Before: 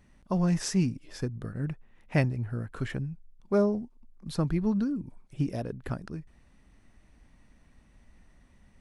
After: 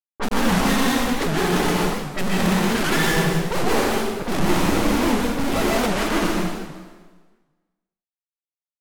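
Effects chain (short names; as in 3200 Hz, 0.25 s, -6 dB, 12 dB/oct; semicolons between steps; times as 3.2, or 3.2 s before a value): sine-wave speech; bell 540 Hz -7 dB 0.25 oct; notches 50/100/150/200/250 Hz; in parallel at 0 dB: compressor 4:1, threshold -37 dBFS, peak gain reduction 15 dB; on the sum: half-wave rectifier; on a send: reverse echo 54 ms -9.5 dB; on the sum: grains 0.1 s, grains 20/s; companded quantiser 2-bit; low-pass opened by the level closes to 430 Hz, open at -26.5 dBFS; plate-style reverb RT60 1.4 s, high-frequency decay 0.9×, pre-delay 0.11 s, DRR -5 dB; record warp 78 rpm, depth 250 cents; gain +6.5 dB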